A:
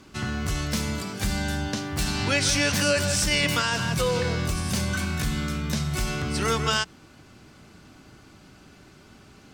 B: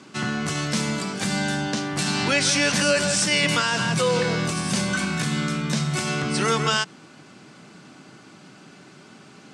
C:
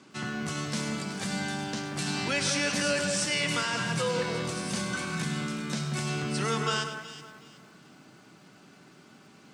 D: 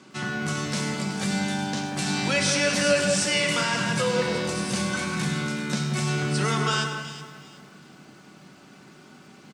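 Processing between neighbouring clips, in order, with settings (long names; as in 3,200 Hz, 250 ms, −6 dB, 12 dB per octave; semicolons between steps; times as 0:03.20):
elliptic band-pass filter 150–9,200 Hz, stop band 60 dB; in parallel at −2 dB: brickwall limiter −19 dBFS, peak gain reduction 10 dB
delay that swaps between a low-pass and a high-pass 186 ms, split 1,900 Hz, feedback 52%, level −7 dB; feedback echo at a low word length 103 ms, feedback 35%, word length 8 bits, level −11.5 dB; level −8 dB
single-tap delay 262 ms −15.5 dB; on a send at −6 dB: convolution reverb RT60 0.80 s, pre-delay 5 ms; on the sum: level +3.5 dB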